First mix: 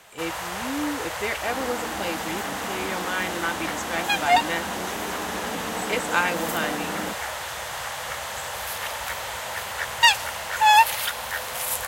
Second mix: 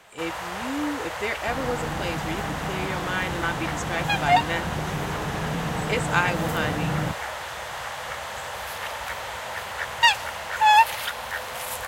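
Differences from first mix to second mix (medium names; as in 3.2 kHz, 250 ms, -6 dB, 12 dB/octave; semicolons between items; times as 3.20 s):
first sound: add treble shelf 5.1 kHz -9 dB; second sound: remove steep high-pass 190 Hz 72 dB/octave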